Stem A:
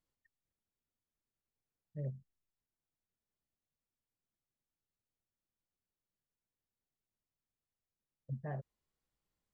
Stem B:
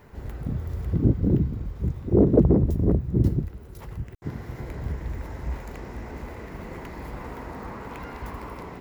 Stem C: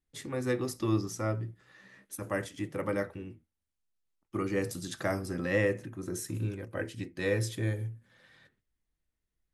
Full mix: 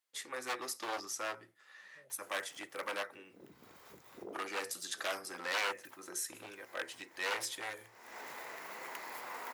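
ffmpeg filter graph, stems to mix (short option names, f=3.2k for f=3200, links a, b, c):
-filter_complex "[0:a]alimiter=level_in=18.5dB:limit=-24dB:level=0:latency=1,volume=-18.5dB,volume=2dB[a];[1:a]highshelf=f=5.1k:g=9,acompressor=threshold=-27dB:ratio=12,adelay=2100,volume=-1.5dB[b];[2:a]aeval=exprs='0.0447*(abs(mod(val(0)/0.0447+3,4)-2)-1)':c=same,volume=1.5dB,asplit=2[c][d];[d]apad=whole_len=481024[e];[b][e]sidechaincompress=threshold=-51dB:ratio=4:attack=6.4:release=217[f];[a][f][c]amix=inputs=3:normalize=0,highpass=820"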